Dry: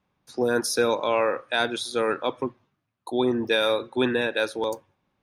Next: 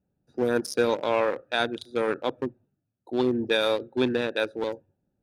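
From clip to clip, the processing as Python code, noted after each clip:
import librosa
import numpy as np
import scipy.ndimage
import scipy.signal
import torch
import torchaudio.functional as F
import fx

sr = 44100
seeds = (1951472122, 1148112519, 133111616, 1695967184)

y = fx.wiener(x, sr, points=41)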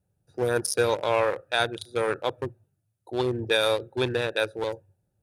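y = fx.graphic_eq_15(x, sr, hz=(100, 250, 10000), db=(9, -12, 10))
y = F.gain(torch.from_numpy(y), 1.5).numpy()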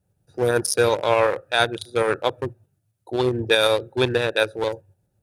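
y = fx.tremolo_shape(x, sr, shape='saw_up', hz=7.9, depth_pct=35)
y = F.gain(torch.from_numpy(y), 6.5).numpy()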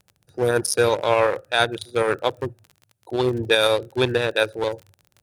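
y = fx.dmg_crackle(x, sr, seeds[0], per_s=32.0, level_db=-34.0)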